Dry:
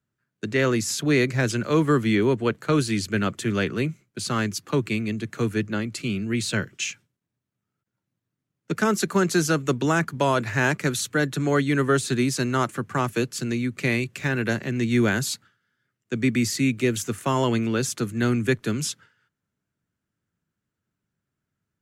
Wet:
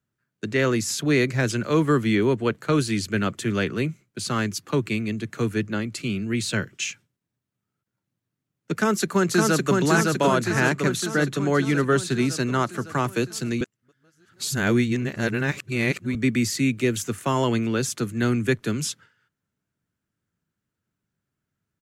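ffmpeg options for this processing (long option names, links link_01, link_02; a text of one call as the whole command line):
ffmpeg -i in.wav -filter_complex "[0:a]asplit=2[link_01][link_02];[link_02]afade=type=in:start_time=8.73:duration=0.01,afade=type=out:start_time=9.77:duration=0.01,aecho=0:1:560|1120|1680|2240|2800|3360|3920|4480|5040|5600|6160:0.794328|0.516313|0.335604|0.218142|0.141793|0.0921652|0.0599074|0.0389398|0.0253109|0.0164521|0.0106938[link_03];[link_01][link_03]amix=inputs=2:normalize=0,asettb=1/sr,asplit=3[link_04][link_05][link_06];[link_04]atrim=end=10.444[link_07];[link_05]atrim=start=10.44:end=12.75,asetpts=PTS-STARTPTS,afade=type=in:duration=0.004:curve=qsin,afade=type=out:start_time=2.306:duration=0.004:curve=qsin,highshelf=frequency=8400:gain=-5[link_08];[link_06]atrim=start=12.746[link_09];[link_07][link_08]acrossfade=duration=0.004:curve1=hsin:curve2=qsin[link_10];[link_10][link_09]acrossfade=duration=0.004:curve1=qsin:curve2=hsin,asplit=3[link_11][link_12][link_13];[link_11]atrim=end=13.612[link_14];[link_12]atrim=start=13.608:end=16.152,asetpts=PTS-STARTPTS,areverse[link_15];[link_13]atrim=start=16.148[link_16];[link_14][link_15]acrossfade=duration=0.004:curve1=hsin:curve2=hsin[link_17];[link_17][link_16]acrossfade=duration=0.004:curve1=hsin:curve2=hsin" out.wav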